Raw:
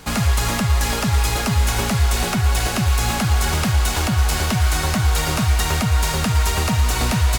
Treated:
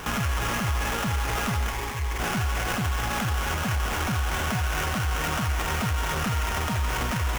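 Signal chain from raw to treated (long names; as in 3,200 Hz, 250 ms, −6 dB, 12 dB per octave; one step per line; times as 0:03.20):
parametric band 1,400 Hz +8 dB 1.2 octaves
in parallel at +0.5 dB: compressor whose output falls as the input rises −22 dBFS, ratio −1
on the sum: brickwall limiter −12 dBFS, peak gain reduction 10.5 dB
0:01.70–0:02.20: phaser with its sweep stopped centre 950 Hz, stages 8
sample-rate reduction 4,300 Hz, jitter 20%
level −6.5 dB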